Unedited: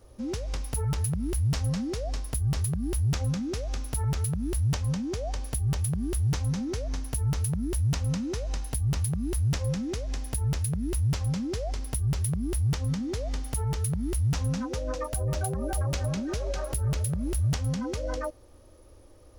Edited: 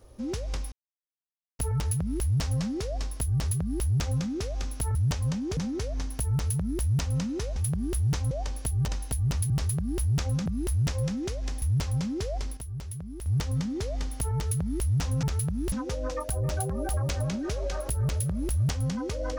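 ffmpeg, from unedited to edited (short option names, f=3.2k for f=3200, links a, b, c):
-filter_complex "[0:a]asplit=14[a][b][c][d][e][f][g][h][i][j][k][l][m][n];[a]atrim=end=0.72,asetpts=PTS-STARTPTS,afade=t=out:st=0.716:d=0.004:c=hsin,apad=pad_dur=0.87[o];[b]atrim=start=0.72:end=4.082,asetpts=PTS-STARTPTS,afade=t=in:d=0.004:c=hsin[p];[c]atrim=start=4.568:end=5.192[q];[d]atrim=start=6.508:end=8.502[r];[e]atrim=start=5.758:end=6.512[s];[f]atrim=start=5.188:end=5.762[t];[g]atrim=start=8.498:end=9.122[u];[h]atrim=start=2.448:end=3.412[v];[i]atrim=start=9.118:end=10.282[w];[j]atrim=start=10.948:end=11.9,asetpts=PTS-STARTPTS,afade=t=out:st=0.752:d=0.2:c=log:silence=0.334965[x];[k]atrim=start=11.9:end=12.59,asetpts=PTS-STARTPTS,volume=-9.5dB[y];[l]atrim=start=12.59:end=14.562,asetpts=PTS-STARTPTS,afade=t=in:d=0.2:c=log:silence=0.334965[z];[m]atrim=start=4.078:end=4.572[aa];[n]atrim=start=14.558[ab];[o][p]concat=n=2:v=0:a=1[ac];[ac][q]acrossfade=d=0.004:c1=hsin:c2=hsin[ad];[ad][r]acrossfade=d=0.004:c1=hsin:c2=hsin[ae];[ae][s]acrossfade=d=0.004:c1=hsin:c2=hsin[af];[af][t]acrossfade=d=0.004:c1=hsin:c2=hsin[ag];[ag][u]acrossfade=d=0.004:c1=hsin:c2=hsin[ah];[ah][v]acrossfade=d=0.004:c1=hsin:c2=hsin[ai];[ai][w]acrossfade=d=0.004:c1=hsin:c2=hsin[aj];[x][y][z]concat=n=3:v=0:a=1[ak];[aj][ak]acrossfade=d=0.004:c1=hsin:c2=hsin[al];[al][aa]acrossfade=d=0.004:c1=hsin:c2=hsin[am];[am][ab]acrossfade=d=0.004:c1=hsin:c2=hsin"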